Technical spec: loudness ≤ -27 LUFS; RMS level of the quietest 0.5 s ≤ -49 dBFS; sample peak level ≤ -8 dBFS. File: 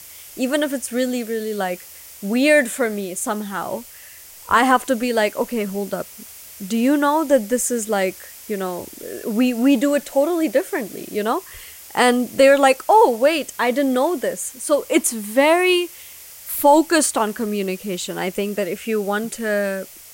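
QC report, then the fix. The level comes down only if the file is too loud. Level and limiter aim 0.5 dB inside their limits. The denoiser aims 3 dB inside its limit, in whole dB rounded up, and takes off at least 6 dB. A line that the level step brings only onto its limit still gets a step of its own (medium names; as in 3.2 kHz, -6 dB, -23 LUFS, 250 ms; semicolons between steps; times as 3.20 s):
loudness -19.5 LUFS: fail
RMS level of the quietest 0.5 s -42 dBFS: fail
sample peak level -3.0 dBFS: fail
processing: trim -8 dB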